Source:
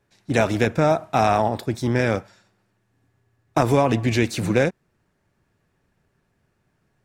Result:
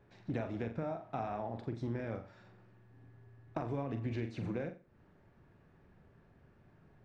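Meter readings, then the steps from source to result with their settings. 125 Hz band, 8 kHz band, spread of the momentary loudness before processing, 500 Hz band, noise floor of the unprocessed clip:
-16.0 dB, under -30 dB, 6 LU, -19.5 dB, -70 dBFS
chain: G.711 law mismatch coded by mu; compressor 4:1, threshold -34 dBFS, peak gain reduction 18 dB; tape spacing loss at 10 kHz 31 dB; on a send: flutter echo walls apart 7.4 m, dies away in 0.32 s; on the sum: gain -3 dB

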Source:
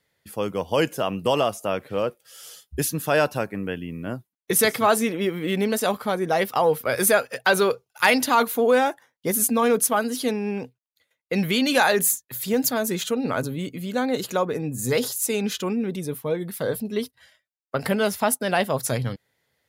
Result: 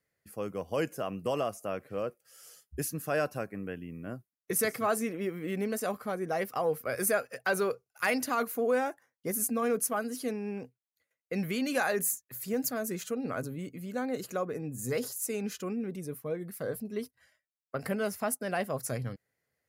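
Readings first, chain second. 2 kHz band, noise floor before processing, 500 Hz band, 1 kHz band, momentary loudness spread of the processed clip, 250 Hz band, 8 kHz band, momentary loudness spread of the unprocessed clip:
-10.0 dB, -82 dBFS, -9.0 dB, -11.0 dB, 11 LU, -9.0 dB, -9.5 dB, 11 LU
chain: bell 3500 Hz -12 dB 0.51 oct; notch 900 Hz, Q 6.1; gain -9 dB

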